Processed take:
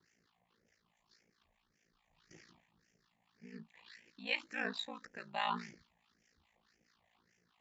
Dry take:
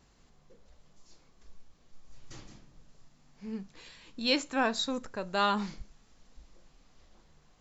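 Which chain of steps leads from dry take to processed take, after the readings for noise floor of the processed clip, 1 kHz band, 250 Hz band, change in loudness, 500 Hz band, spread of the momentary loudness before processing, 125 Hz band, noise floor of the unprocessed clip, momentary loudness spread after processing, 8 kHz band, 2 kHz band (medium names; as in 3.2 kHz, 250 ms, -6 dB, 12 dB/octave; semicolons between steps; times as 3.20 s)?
-80 dBFS, -9.0 dB, -14.5 dB, -8.5 dB, -14.0 dB, 21 LU, -11.0 dB, -64 dBFS, 19 LU, no reading, -5.0 dB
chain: phase shifter stages 6, 1.8 Hz, lowest notch 350–1100 Hz; ring modulator 28 Hz; cabinet simulation 250–6800 Hz, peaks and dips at 280 Hz -5 dB, 580 Hz -4 dB, 1.8 kHz +6 dB; harmonic tremolo 4.7 Hz, depth 70%, crossover 940 Hz; trim +1.5 dB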